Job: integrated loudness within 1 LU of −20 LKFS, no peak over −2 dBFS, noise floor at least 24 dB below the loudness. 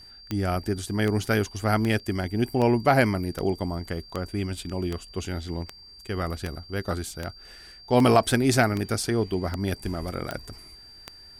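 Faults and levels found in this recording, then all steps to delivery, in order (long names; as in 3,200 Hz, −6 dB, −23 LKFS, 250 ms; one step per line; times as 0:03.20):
number of clicks 15; interfering tone 4,700 Hz; level of the tone −46 dBFS; integrated loudness −26.0 LKFS; sample peak −5.0 dBFS; target loudness −20.0 LKFS
→ click removal
notch filter 4,700 Hz, Q 30
level +6 dB
brickwall limiter −2 dBFS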